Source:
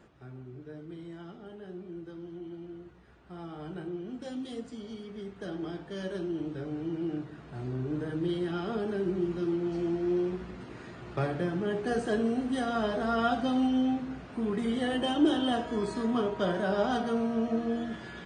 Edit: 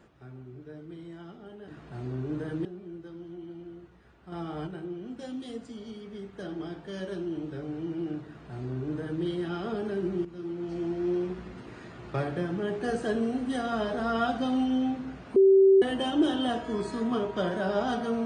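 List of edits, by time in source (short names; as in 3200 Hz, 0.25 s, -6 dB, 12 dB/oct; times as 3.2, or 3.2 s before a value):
3.35–3.7 gain +6 dB
7.29–8.26 copy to 1.68
9.28–10.25 fade in equal-power, from -13 dB
14.39–14.85 bleep 387 Hz -14.5 dBFS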